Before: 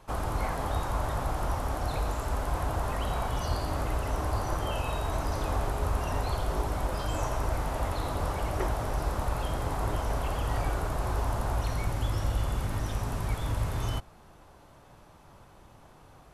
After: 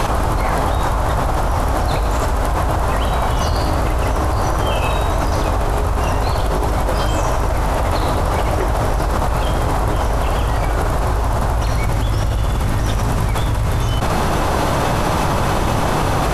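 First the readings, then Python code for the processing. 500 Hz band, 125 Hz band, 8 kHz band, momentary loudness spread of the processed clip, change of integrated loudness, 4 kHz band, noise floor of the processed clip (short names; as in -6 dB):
+14.0 dB, +13.0 dB, +13.0 dB, 2 LU, +13.0 dB, +14.5 dB, -18 dBFS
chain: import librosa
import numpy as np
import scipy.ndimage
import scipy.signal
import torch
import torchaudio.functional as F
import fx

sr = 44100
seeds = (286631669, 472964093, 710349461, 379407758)

y = fx.high_shelf(x, sr, hz=11000.0, db=-5.0)
y = fx.env_flatten(y, sr, amount_pct=100)
y = y * librosa.db_to_amplitude(7.5)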